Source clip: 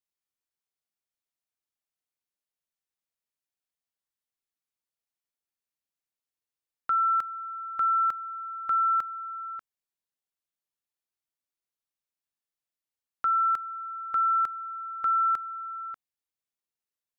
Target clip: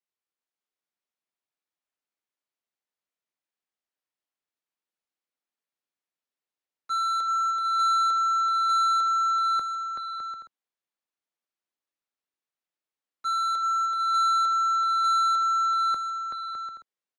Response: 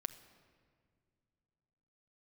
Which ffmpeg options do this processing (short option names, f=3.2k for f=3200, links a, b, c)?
-filter_complex "[0:a]aemphasis=mode=reproduction:type=50fm,apsyclip=30.5dB,acrossover=split=160|520[a][b][c];[a]acrusher=bits=6:mix=0:aa=0.000001[d];[c]asoftclip=type=tanh:threshold=-9.5dB[e];[d][b][e]amix=inputs=3:normalize=0,agate=range=-33dB:threshold=0dB:ratio=3:detection=peak,aecho=1:1:380|608|744.8|826.9|876.1:0.631|0.398|0.251|0.158|0.1,volume=3dB"